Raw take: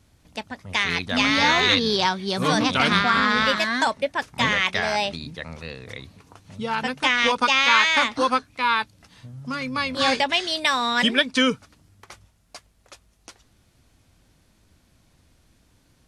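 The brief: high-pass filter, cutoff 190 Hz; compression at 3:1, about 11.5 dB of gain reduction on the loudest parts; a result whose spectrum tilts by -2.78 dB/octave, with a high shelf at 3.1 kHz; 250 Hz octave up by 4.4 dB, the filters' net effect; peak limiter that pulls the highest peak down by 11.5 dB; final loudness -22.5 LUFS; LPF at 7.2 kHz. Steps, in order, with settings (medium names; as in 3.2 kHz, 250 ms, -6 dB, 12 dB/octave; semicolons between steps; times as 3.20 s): high-pass 190 Hz; low-pass 7.2 kHz; peaking EQ 250 Hz +6.5 dB; treble shelf 3.1 kHz -8.5 dB; compression 3:1, threshold -30 dBFS; trim +14 dB; peak limiter -12.5 dBFS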